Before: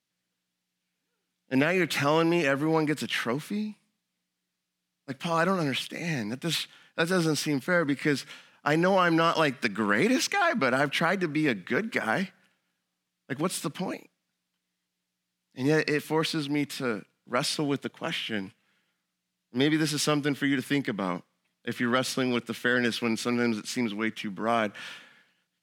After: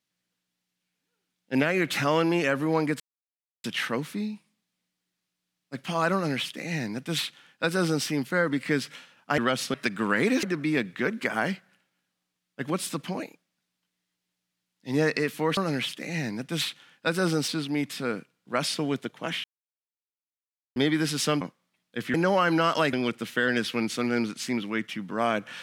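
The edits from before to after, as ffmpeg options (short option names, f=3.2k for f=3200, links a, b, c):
-filter_complex "[0:a]asplit=12[a][b][c][d][e][f][g][h][i][j][k][l];[a]atrim=end=3,asetpts=PTS-STARTPTS,afade=t=out:st=2.996:d=0.004:c=hsin,apad=pad_dur=0.64[m];[b]atrim=start=3:end=8.742,asetpts=PTS-STARTPTS,afade=t=in:d=0.004:c=hsin[n];[c]atrim=start=21.848:end=22.212[o];[d]atrim=start=9.528:end=10.222[p];[e]atrim=start=11.138:end=16.282[q];[f]atrim=start=5.498:end=7.412[r];[g]atrim=start=16.278:end=18.24,asetpts=PTS-STARTPTS,afade=t=out:st=1.958:d=0.004:c=hsin[s];[h]atrim=start=18.24:end=19.56,asetpts=PTS-STARTPTS,volume=0[t];[i]atrim=start=19.56:end=20.212,asetpts=PTS-STARTPTS,afade=t=in:d=0.004:c=hsin[u];[j]atrim=start=21.118:end=21.852[v];[k]atrim=start=8.738:end=9.532[w];[l]atrim=start=22.208[x];[m][n]concat=n=2:v=0:a=1[y];[y][o]acrossfade=d=0.004:c1=hsin:c2=hsin[z];[z][p]acrossfade=d=0.004:c1=hsin:c2=hsin[aa];[aa][q]acrossfade=d=0.004:c1=hsin:c2=hsin[ab];[ab][r]acrossfade=d=0.004:c1=hsin:c2=hsin[ac];[s][t][u]concat=n=3:v=0:a=1[ad];[ac][ad]acrossfade=d=0.004:c1=hsin:c2=hsin[ae];[ae][v]acrossfade=d=0.004:c1=hsin:c2=hsin[af];[af][w]acrossfade=d=0.004:c1=hsin:c2=hsin[ag];[ag][x]acrossfade=d=0.004:c1=hsin:c2=hsin"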